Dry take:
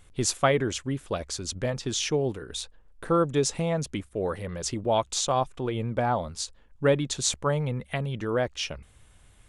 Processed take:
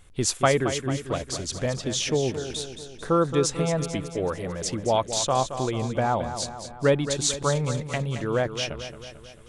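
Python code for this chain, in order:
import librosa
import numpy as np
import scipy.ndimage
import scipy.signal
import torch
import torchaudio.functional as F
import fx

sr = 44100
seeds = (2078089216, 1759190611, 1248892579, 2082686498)

y = fx.echo_feedback(x, sr, ms=222, feedback_pct=56, wet_db=-10)
y = y * librosa.db_to_amplitude(1.5)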